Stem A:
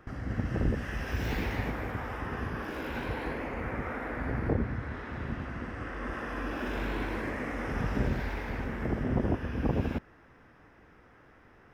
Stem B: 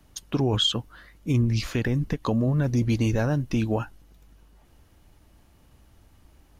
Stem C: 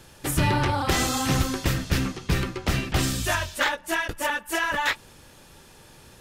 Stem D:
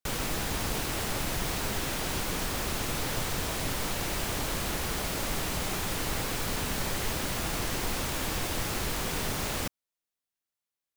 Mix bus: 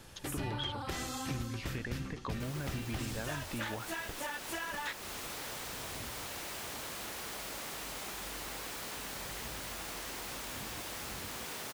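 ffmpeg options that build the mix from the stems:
-filter_complex "[0:a]aecho=1:1:1:0.65,flanger=delay=17:depth=7:speed=1.5,adelay=1450,volume=0.158[s0];[1:a]lowpass=3800,equalizer=f=1800:t=o:w=2.2:g=8,volume=0.473[s1];[2:a]volume=0.596[s2];[3:a]highpass=f=460:p=1,adelay=2350,volume=0.668[s3];[s0][s1][s2][s3]amix=inputs=4:normalize=0,acompressor=threshold=0.00891:ratio=2.5"

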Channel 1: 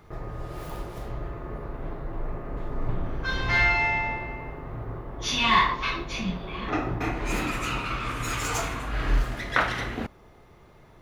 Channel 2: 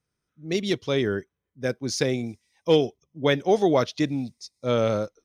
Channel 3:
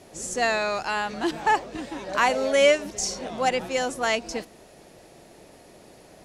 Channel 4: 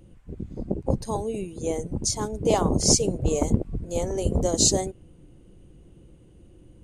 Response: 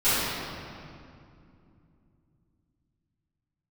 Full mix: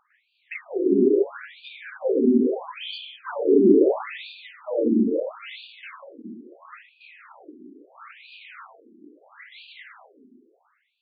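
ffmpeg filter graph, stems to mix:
-filter_complex "[0:a]asoftclip=type=tanh:threshold=0.075,volume=0.422,asplit=2[s0][s1];[s1]volume=0.075[s2];[1:a]lowshelf=f=310:g=7,acrossover=split=450|3000[s3][s4][s5];[s4]acompressor=threshold=0.0501:ratio=2[s6];[s3][s6][s5]amix=inputs=3:normalize=0,volume=1,asplit=2[s7][s8];[s8]volume=0.282[s9];[2:a]acompressor=threshold=0.0562:ratio=6,asoftclip=type=tanh:threshold=0.0447,adelay=350,volume=0.335[s10];[3:a]acompressor=threshold=0.0562:ratio=2.5,volume=0.891[s11];[4:a]atrim=start_sample=2205[s12];[s2][s9]amix=inputs=2:normalize=0[s13];[s13][s12]afir=irnorm=-1:irlink=0[s14];[s0][s7][s10][s11][s14]amix=inputs=5:normalize=0,equalizer=f=640:w=1.5:g=-4.5,afftfilt=real='re*between(b*sr/1024,280*pow(3400/280,0.5+0.5*sin(2*PI*0.75*pts/sr))/1.41,280*pow(3400/280,0.5+0.5*sin(2*PI*0.75*pts/sr))*1.41)':imag='im*between(b*sr/1024,280*pow(3400/280,0.5+0.5*sin(2*PI*0.75*pts/sr))/1.41,280*pow(3400/280,0.5+0.5*sin(2*PI*0.75*pts/sr))*1.41)':win_size=1024:overlap=0.75"

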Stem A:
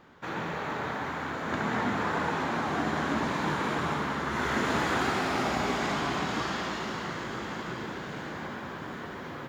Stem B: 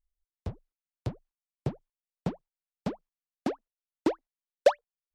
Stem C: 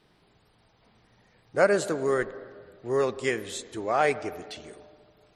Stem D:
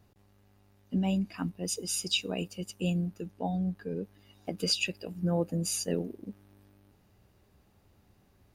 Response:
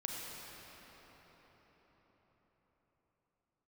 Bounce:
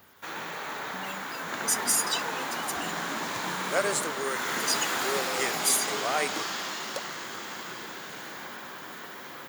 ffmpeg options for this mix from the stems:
-filter_complex "[0:a]highpass=f=89:w=0.5412,highpass=f=89:w=1.3066,volume=0.75[s0];[1:a]adelay=2300,volume=0.708[s1];[2:a]adelay=2150,volume=0.562[s2];[3:a]aphaser=in_gain=1:out_gain=1:delay=2.6:decay=0.76:speed=0.26:type=triangular,volume=0.562,asplit=2[s3][s4];[s4]apad=whole_len=331008[s5];[s2][s5]sidechaingate=range=0.0224:threshold=0.00126:ratio=16:detection=peak[s6];[s1][s3]amix=inputs=2:normalize=0,acompressor=threshold=0.02:ratio=6,volume=1[s7];[s0][s6][s7]amix=inputs=3:normalize=0,aemphasis=mode=production:type=riaa"

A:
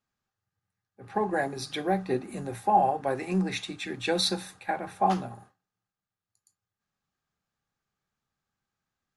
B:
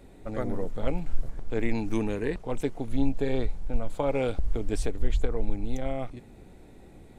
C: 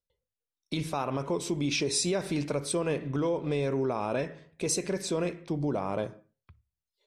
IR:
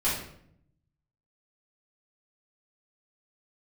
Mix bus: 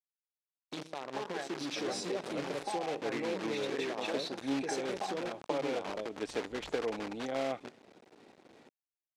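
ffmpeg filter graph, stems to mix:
-filter_complex "[0:a]dynaudnorm=f=210:g=13:m=3.55,acompressor=threshold=0.0562:ratio=6,volume=0.266[s0];[1:a]adelay=1500,volume=1[s1];[2:a]equalizer=f=1700:t=o:w=1.1:g=-15,volume=0.501,asplit=2[s2][s3];[s3]apad=whole_len=383181[s4];[s1][s4]sidechaincompress=threshold=0.0112:ratio=8:attack=16:release=771[s5];[s0][s5][s2]amix=inputs=3:normalize=0,acrusher=bits=7:dc=4:mix=0:aa=0.000001,highpass=300,lowpass=5000"

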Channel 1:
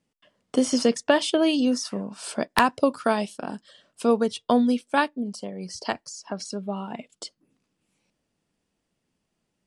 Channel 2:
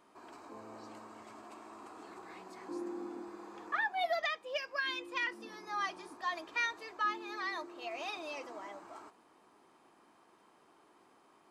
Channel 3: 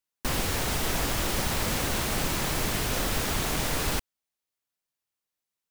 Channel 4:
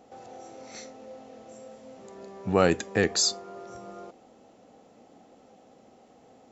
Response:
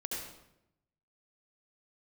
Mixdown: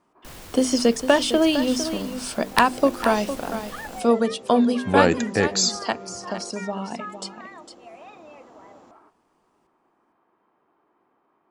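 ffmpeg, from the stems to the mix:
-filter_complex "[0:a]bandreject=f=50:t=h:w=6,bandreject=f=100:t=h:w=6,bandreject=f=150:t=h:w=6,bandreject=f=200:t=h:w=6,bandreject=f=250:t=h:w=6,bandreject=f=300:t=h:w=6,bandreject=f=350:t=h:w=6,bandreject=f=400:t=h:w=6,bandreject=f=450:t=h:w=6,volume=1.33,asplit=2[s0][s1];[s1]volume=0.282[s2];[1:a]lowpass=1800,volume=0.794[s3];[2:a]acrusher=bits=6:dc=4:mix=0:aa=0.000001,asoftclip=type=tanh:threshold=0.1,tremolo=f=0.59:d=0.35,volume=0.224,asplit=2[s4][s5];[s5]volume=0.188[s6];[3:a]adelay=2400,volume=1.33,asplit=2[s7][s8];[s8]volume=0.0668[s9];[4:a]atrim=start_sample=2205[s10];[s6][s9]amix=inputs=2:normalize=0[s11];[s11][s10]afir=irnorm=-1:irlink=0[s12];[s2]aecho=0:1:456:1[s13];[s0][s3][s4][s7][s12][s13]amix=inputs=6:normalize=0"

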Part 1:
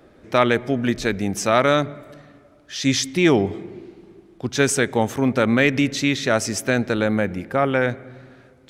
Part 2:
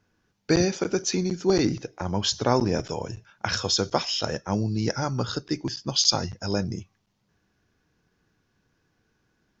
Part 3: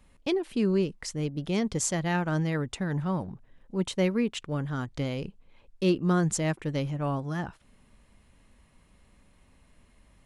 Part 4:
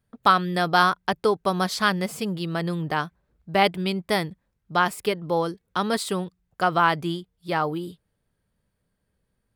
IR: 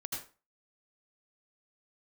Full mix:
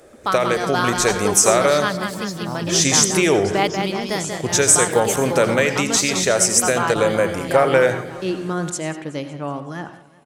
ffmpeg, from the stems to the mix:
-filter_complex "[0:a]highshelf=f=2400:g=11,acompressor=threshold=0.126:ratio=6,equalizer=f=250:t=o:w=1:g=-6,equalizer=f=500:t=o:w=1:g=9,equalizer=f=4000:t=o:w=1:g=-6,equalizer=f=8000:t=o:w=1:g=10,volume=0.668,asplit=2[s0][s1];[s1]volume=0.531[s2];[1:a]asplit=2[s3][s4];[s4]afreqshift=-0.59[s5];[s3][s5]amix=inputs=2:normalize=1,volume=0.282[s6];[2:a]highpass=210,adelay=2400,volume=0.531,asplit=3[s7][s8][s9];[s8]volume=0.398[s10];[s9]volume=0.15[s11];[3:a]volume=0.562,asplit=2[s12][s13];[s13]volume=0.531[s14];[4:a]atrim=start_sample=2205[s15];[s2][s10]amix=inputs=2:normalize=0[s16];[s16][s15]afir=irnorm=-1:irlink=0[s17];[s11][s14]amix=inputs=2:normalize=0,aecho=0:1:187|374|561|748|935|1122|1309|1496:1|0.56|0.314|0.176|0.0983|0.0551|0.0308|0.0173[s18];[s0][s6][s7][s12][s17][s18]amix=inputs=6:normalize=0,dynaudnorm=f=160:g=9:m=2.37"

